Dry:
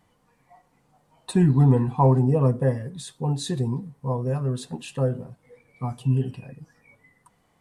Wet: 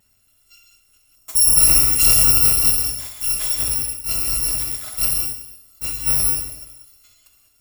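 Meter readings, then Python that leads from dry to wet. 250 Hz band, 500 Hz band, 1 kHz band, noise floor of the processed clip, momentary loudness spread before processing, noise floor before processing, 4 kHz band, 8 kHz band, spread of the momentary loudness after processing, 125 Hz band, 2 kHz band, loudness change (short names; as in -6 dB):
-13.5 dB, -12.5 dB, -7.0 dB, -60 dBFS, 16 LU, -66 dBFS, +18.0 dB, +27.0 dB, 13 LU, -12.5 dB, +12.0 dB, +9.0 dB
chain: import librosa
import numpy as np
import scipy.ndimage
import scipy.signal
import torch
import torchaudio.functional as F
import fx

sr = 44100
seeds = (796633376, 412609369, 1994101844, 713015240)

p1 = fx.bit_reversed(x, sr, seeds[0], block=256)
p2 = p1 + fx.echo_feedback(p1, sr, ms=64, feedback_pct=58, wet_db=-12, dry=0)
p3 = fx.rev_gated(p2, sr, seeds[1], gate_ms=230, shape='flat', drr_db=0.5)
p4 = fx.spec_box(p3, sr, start_s=1.15, length_s=0.42, low_hz=1300.0, high_hz=5300.0, gain_db=-7)
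p5 = fx.notch(p4, sr, hz=6100.0, q=13.0)
y = p5 * 10.0 ** (1.5 / 20.0)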